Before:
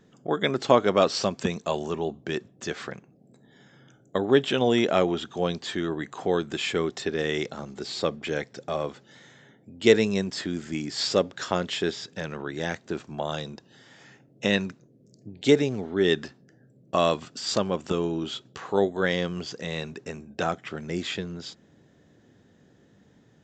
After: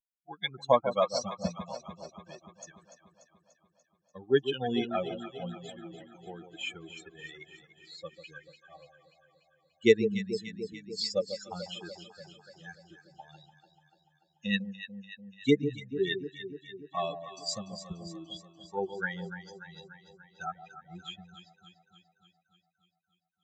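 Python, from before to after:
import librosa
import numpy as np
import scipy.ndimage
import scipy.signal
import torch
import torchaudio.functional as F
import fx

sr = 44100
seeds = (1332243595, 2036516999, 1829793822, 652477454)

y = fx.bin_expand(x, sr, power=3.0)
y = fx.echo_alternate(y, sr, ms=146, hz=820.0, feedback_pct=78, wet_db=-9)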